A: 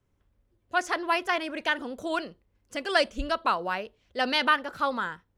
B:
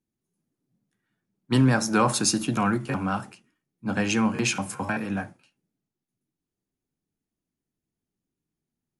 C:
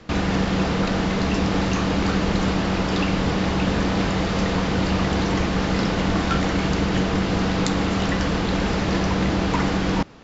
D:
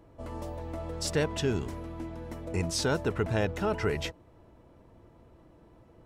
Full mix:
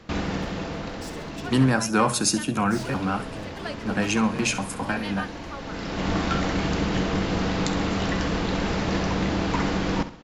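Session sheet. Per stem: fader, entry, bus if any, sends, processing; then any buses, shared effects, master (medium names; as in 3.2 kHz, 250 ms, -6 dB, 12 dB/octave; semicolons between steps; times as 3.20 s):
-12.5 dB, 0.70 s, no send, no echo send, bit crusher 11-bit
+0.5 dB, 0.00 s, no send, echo send -15.5 dB, none
-3.0 dB, 0.00 s, muted 1.65–2.68 s, no send, echo send -12.5 dB, auto duck -18 dB, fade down 1.60 s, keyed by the second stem
-5.0 dB, 0.00 s, no send, echo send -9 dB, saturation -32 dBFS, distortion -7 dB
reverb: none
echo: feedback delay 66 ms, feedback 36%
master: hum notches 60/120 Hz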